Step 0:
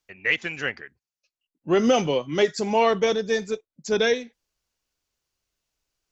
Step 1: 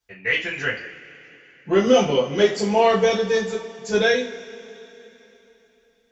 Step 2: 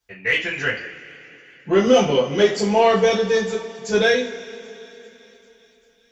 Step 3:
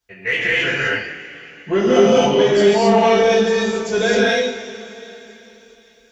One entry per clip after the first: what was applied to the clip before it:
coupled-rooms reverb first 0.31 s, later 3.6 s, from −22 dB, DRR −8 dB; level −6 dB
in parallel at −9.5 dB: soft clipping −18.5 dBFS, distortion −9 dB; on the sum: delay with a high-pass on its return 393 ms, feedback 69%, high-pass 3,200 Hz, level −23 dB
reverb whose tail is shaped and stops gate 290 ms rising, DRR −6 dB; in parallel at 0 dB: brickwall limiter −10 dBFS, peak gain reduction 12.5 dB; on the sum: level −7 dB

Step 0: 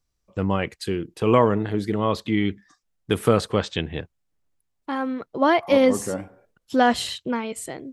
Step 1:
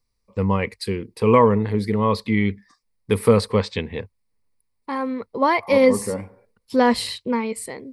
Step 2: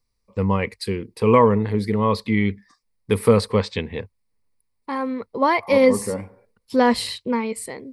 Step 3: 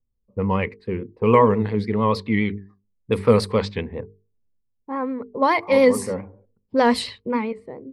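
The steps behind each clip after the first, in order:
EQ curve with evenly spaced ripples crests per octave 0.91, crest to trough 10 dB
no processing that can be heard
mains-hum notches 50/100/150/200/250/300/350/400/450 Hz; low-pass that shuts in the quiet parts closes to 360 Hz, open at −14.5 dBFS; pitch vibrato 7.1 Hz 60 cents

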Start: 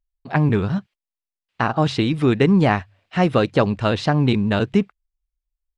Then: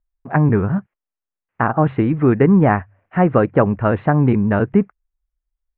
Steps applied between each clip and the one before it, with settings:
inverse Chebyshev low-pass filter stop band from 4,700 Hz, stop band 50 dB
level +3 dB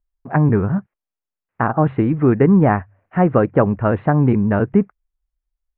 high-shelf EQ 2,700 Hz −8 dB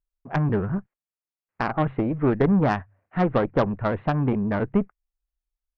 harmonic generator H 6 −19 dB, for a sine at −1.5 dBFS
level −7 dB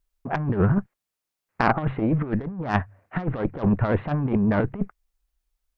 compressor whose output falls as the input rises −26 dBFS, ratio −0.5
level +4.5 dB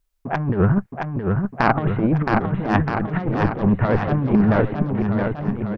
bouncing-ball delay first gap 670 ms, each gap 0.9×, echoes 5
level +3 dB

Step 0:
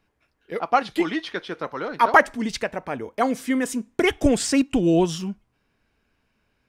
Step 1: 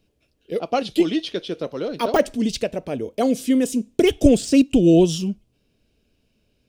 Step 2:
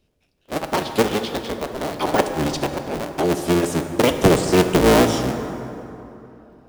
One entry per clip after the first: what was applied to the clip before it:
de-essing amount 60%; flat-topped bell 1,300 Hz −14.5 dB; level +5 dB
sub-harmonics by changed cycles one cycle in 3, inverted; dense smooth reverb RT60 3.2 s, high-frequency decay 0.5×, DRR 6.5 dB; level −1 dB

